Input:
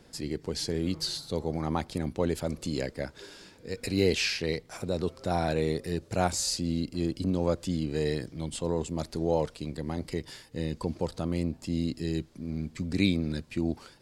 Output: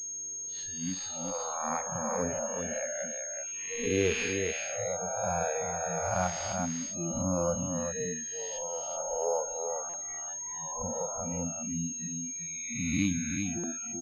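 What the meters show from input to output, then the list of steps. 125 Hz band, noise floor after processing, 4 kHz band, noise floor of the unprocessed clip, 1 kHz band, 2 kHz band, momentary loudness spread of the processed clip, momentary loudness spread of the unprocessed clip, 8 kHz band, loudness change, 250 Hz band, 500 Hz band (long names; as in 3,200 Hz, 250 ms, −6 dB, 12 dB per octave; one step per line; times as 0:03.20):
−6.5 dB, −39 dBFS, −8.5 dB, −56 dBFS, +2.0 dB, +0.5 dB, 6 LU, 9 LU, +10.5 dB, −1.0 dB, −5.5 dB, −2.0 dB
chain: peak hold with a rise ahead of every peak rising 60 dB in 2.27 s
noise reduction from a noise print of the clip's start 29 dB
multi-tap delay 54/381 ms −14/−5.5 dB
buffer that repeats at 0:03.47/0:09.89/0:13.59, samples 256, times 7
switching amplifier with a slow clock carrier 6,500 Hz
level −4.5 dB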